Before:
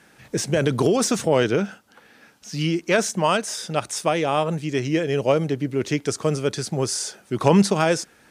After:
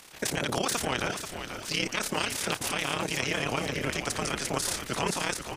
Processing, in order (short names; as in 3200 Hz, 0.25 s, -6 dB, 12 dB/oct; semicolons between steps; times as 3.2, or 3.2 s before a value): spectral limiter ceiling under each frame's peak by 21 dB; compressor 6:1, threshold -28 dBFS, peak gain reduction 16 dB; AM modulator 23 Hz, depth 75%; transient shaper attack -6 dB, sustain +4 dB; granular stretch 0.67×, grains 33 ms; frequency-shifting echo 0.485 s, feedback 45%, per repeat -72 Hz, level -8.5 dB; gain +8 dB